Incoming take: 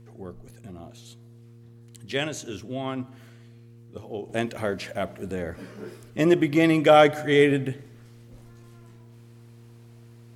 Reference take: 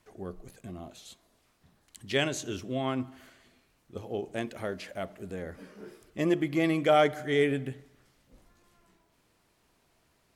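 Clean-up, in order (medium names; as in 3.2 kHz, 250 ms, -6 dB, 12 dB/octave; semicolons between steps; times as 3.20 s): de-hum 116.8 Hz, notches 4; gain correction -7 dB, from 4.29 s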